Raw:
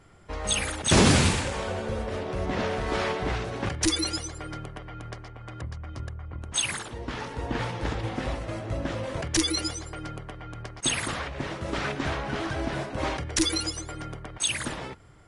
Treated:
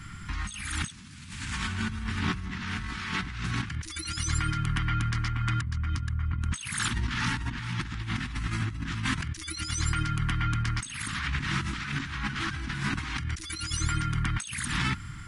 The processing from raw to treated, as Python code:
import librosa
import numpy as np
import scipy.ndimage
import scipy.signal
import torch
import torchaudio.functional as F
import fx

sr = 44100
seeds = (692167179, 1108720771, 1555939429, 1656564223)

y = scipy.signal.sosfilt(scipy.signal.cheby1(2, 1.0, [210.0, 1400.0], 'bandstop', fs=sr, output='sos'), x)
y = fx.over_compress(y, sr, threshold_db=-41.0, ratio=-1.0)
y = F.gain(torch.from_numpy(y), 8.0).numpy()